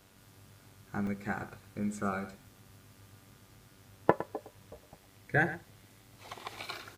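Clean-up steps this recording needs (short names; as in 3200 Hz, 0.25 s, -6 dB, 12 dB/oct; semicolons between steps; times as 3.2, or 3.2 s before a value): de-hum 96.4 Hz, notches 37; interpolate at 1.07/1.75/2.42, 1.3 ms; inverse comb 0.11 s -13.5 dB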